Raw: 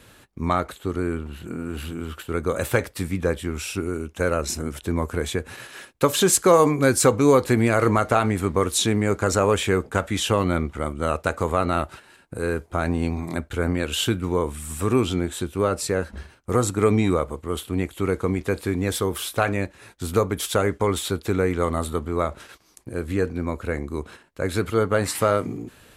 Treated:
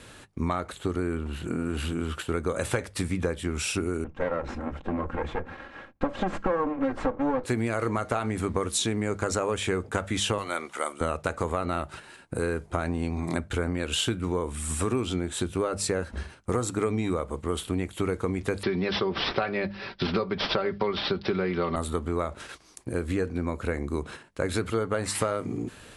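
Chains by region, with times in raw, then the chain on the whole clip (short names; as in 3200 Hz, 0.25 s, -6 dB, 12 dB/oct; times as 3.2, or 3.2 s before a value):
4.04–7.44 minimum comb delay 3.7 ms + LPF 1500 Hz
10.38–11.01 HPF 610 Hz + high shelf 6200 Hz +10 dB
18.63–21.76 comb 5.2 ms + careless resampling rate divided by 4×, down none, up filtered + three-band squash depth 40%
whole clip: steep low-pass 11000 Hz 72 dB/oct; notches 50/100/150/200 Hz; compressor 6:1, threshold -27 dBFS; gain +3 dB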